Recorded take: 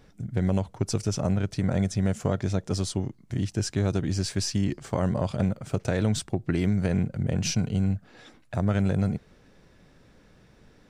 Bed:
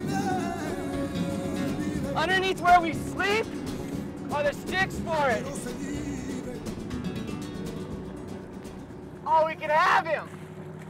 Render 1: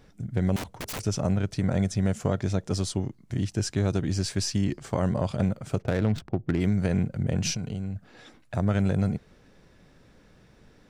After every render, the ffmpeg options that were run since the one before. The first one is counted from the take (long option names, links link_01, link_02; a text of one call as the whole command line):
ffmpeg -i in.wav -filter_complex "[0:a]asettb=1/sr,asplit=3[link_01][link_02][link_03];[link_01]atrim=end=0.564[link_04];[link_02]atrim=start=0.56:end=1,asetpts=PTS-STARTPTS,afade=type=in:duration=0.004:curve=qsin,afade=type=out:start_time=0.436:duration=0.004:curve=qsin,aeval=exprs='(mod(28.2*val(0)+1,2)-1)/28.2':channel_layout=same[link_05];[link_03]atrim=start=0.996[link_06];[link_04][link_05]acrossfade=duration=0.004:curve1=hsin:curve2=qsin[link_07];[link_07][link_06]acrossfade=duration=0.004:curve1=qsin:curve2=hsin,asplit=3[link_08][link_09][link_10];[link_08]afade=type=out:start_time=5.81:duration=0.02[link_11];[link_09]adynamicsmooth=sensitivity=4:basefreq=780,afade=type=in:start_time=5.81:duration=0.02,afade=type=out:start_time=6.59:duration=0.02[link_12];[link_10]afade=type=in:start_time=6.59:duration=0.02[link_13];[link_11][link_12][link_13]amix=inputs=3:normalize=0,asettb=1/sr,asplit=3[link_14][link_15][link_16];[link_14]atrim=end=7.564[link_17];[link_15]atrim=start=7.56:end=7.96,asetpts=PTS-STARTPTS,afade=type=in:duration=0.004:curve=qsin,afade=type=out:start_time=0.396:duration=0.004:curve=qsin,acompressor=threshold=-28dB:ratio=6:attack=3.2:release=140:knee=1:detection=peak[link_18];[link_16]atrim=start=7.956[link_19];[link_17][link_18]acrossfade=duration=0.004:curve1=hsin:curve2=qsin[link_20];[link_20][link_19]acrossfade=duration=0.004:curve1=qsin:curve2=hsin" out.wav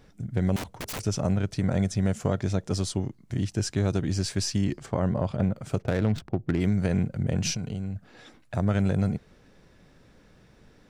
ffmpeg -i in.wav -filter_complex "[0:a]asettb=1/sr,asplit=3[link_01][link_02][link_03];[link_01]atrim=end=4.864[link_04];[link_02]atrim=start=4.86:end=5.56,asetpts=PTS-STARTPTS,afade=type=in:duration=0.004:curve=qsin,afade=type=out:start_time=0.696:duration=0.004:curve=qsin,lowpass=frequency=2100:poles=1[link_05];[link_03]atrim=start=5.556[link_06];[link_04][link_05]acrossfade=duration=0.004:curve1=hsin:curve2=qsin[link_07];[link_07][link_06]acrossfade=duration=0.004:curve1=qsin:curve2=hsin" out.wav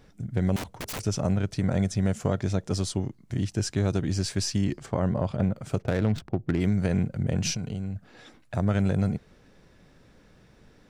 ffmpeg -i in.wav -af anull out.wav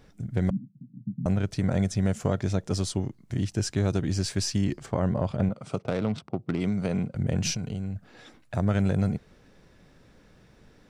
ffmpeg -i in.wav -filter_complex "[0:a]asettb=1/sr,asplit=3[link_01][link_02][link_03];[link_01]atrim=end=0.504[link_04];[link_02]atrim=start=0.5:end=1.26,asetpts=PTS-STARTPTS,afade=type=in:duration=0.004:curve=qsin,afade=type=out:start_time=0.756:duration=0.004:curve=qsin,asuperpass=centerf=180:order=12:qfactor=1.3[link_05];[link_03]atrim=start=1.256[link_06];[link_04][link_05]acrossfade=duration=0.004:curve1=hsin:curve2=qsin[link_07];[link_07][link_06]acrossfade=duration=0.004:curve1=qsin:curve2=hsin,asettb=1/sr,asplit=3[link_08][link_09][link_10];[link_08]atrim=end=5.494[link_11];[link_09]atrim=start=5.49:end=7.15,asetpts=PTS-STARTPTS,afade=type=in:duration=0.004:curve=qsin,afade=type=out:start_time=1.656:duration=0.004:curve=qsin,highpass=150,equalizer=frequency=330:width_type=q:width=4:gain=-4,equalizer=frequency=1200:width_type=q:width=4:gain=4,equalizer=frequency=1700:width_type=q:width=4:gain=-8,equalizer=frequency=6900:width_type=q:width=4:gain=-6,lowpass=frequency=9300:width=0.5412,lowpass=frequency=9300:width=1.3066[link_12];[link_10]atrim=start=7.146[link_13];[link_11][link_12]acrossfade=duration=0.004:curve1=hsin:curve2=qsin[link_14];[link_14][link_13]acrossfade=duration=0.004:curve1=qsin:curve2=hsin" out.wav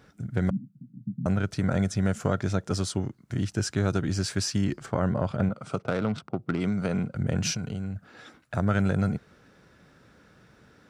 ffmpeg -i in.wav -af "highpass=70,equalizer=frequency=1400:width=3.3:gain=8.5" out.wav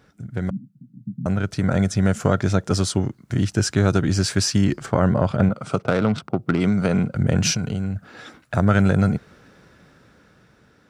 ffmpeg -i in.wav -af "dynaudnorm=framelen=440:gausssize=7:maxgain=9dB" out.wav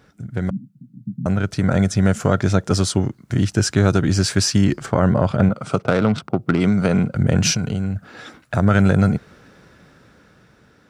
ffmpeg -i in.wav -af "volume=2.5dB,alimiter=limit=-3dB:level=0:latency=1" out.wav